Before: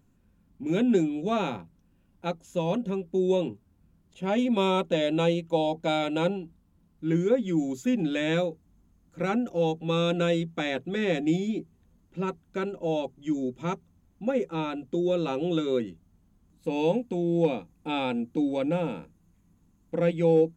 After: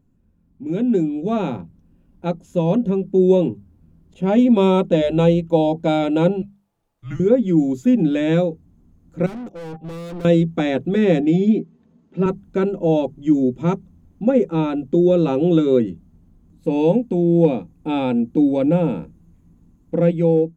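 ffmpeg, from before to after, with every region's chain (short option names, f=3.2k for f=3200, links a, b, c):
-filter_complex "[0:a]asettb=1/sr,asplit=3[a][b][c];[a]atrim=end=5.014[d];[b]atrim=start=5.01:end=5.42,asetpts=PTS-STARTPTS,afade=t=in:d=0.004:c=qsin,afade=t=out:st=0.406:d=0.004:c=qsin,bandreject=f=300:w=5.7,aeval=exprs='val(0)+0.00282*(sin(2*PI*60*n/s)+sin(2*PI*2*60*n/s)/2+sin(2*PI*3*60*n/s)/3+sin(2*PI*4*60*n/s)/4+sin(2*PI*5*60*n/s)/5)':c=same[e];[c]atrim=start=5.416[f];[d][e]acrossfade=d=0.004:c1=hsin:c2=qsin[g];[g][f]acrossfade=d=0.004:c1=qsin:c2=hsin,asettb=1/sr,asplit=3[h][i][j];[h]atrim=end=6.424[k];[i]atrim=start=6.42:end=7.2,asetpts=PTS-STARTPTS,afade=t=in:d=0.004:c=qsin,afade=t=out:st=0.776:d=0.004:c=qsin,highpass=730,afreqshift=-190[l];[j]atrim=start=7.196[m];[k][l]acrossfade=d=0.004:c1=hsin:c2=qsin[n];[n][m]acrossfade=d=0.004:c1=qsin:c2=hsin,asettb=1/sr,asplit=3[o][p][q];[o]atrim=end=9.264[r];[p]atrim=start=9.26:end=10.25,asetpts=PTS-STARTPTS,afade=t=in:d=0.004:c=qsin,afade=t=out:st=0.986:d=0.004:c=qsin,bandreject=f=198.2:t=h:w=4,bandreject=f=396.4:t=h:w=4,bandreject=f=594.6:t=h:w=4,bandreject=f=792.8:t=h:w=4,agate=range=-14dB:threshold=-36dB:ratio=16:release=100:detection=peak,aeval=exprs='(tanh(112*val(0)+0.15)-tanh(0.15))/112':c=same[s];[q]atrim=start=10.246[t];[r][s]acrossfade=d=0.004:c1=hsin:c2=qsin[u];[u][t]acrossfade=d=0.004:c1=qsin:c2=hsin,asettb=1/sr,asplit=3[v][w][x];[v]atrim=end=11.204[y];[w]atrim=start=11.2:end=12.26,asetpts=PTS-STARTPTS,afade=t=in:d=0.004:c=qsin,afade=t=out:st=1.056:d=0.004:c=qsin,highpass=190,lowpass=5.3k,aecho=1:1:4.6:0.44,atrim=end_sample=46746[z];[x]atrim=start=12.256[aa];[y][z]acrossfade=d=0.004:c1=hsin:c2=qsin[ab];[ab][aa]acrossfade=d=0.004:c1=qsin:c2=hsin,tiltshelf=f=710:g=6.5,bandreject=f=50:t=h:w=6,bandreject=f=100:t=h:w=6,bandreject=f=150:t=h:w=6,bandreject=f=200:t=h:w=6,dynaudnorm=f=800:g=3:m=11.5dB,volume=-2dB"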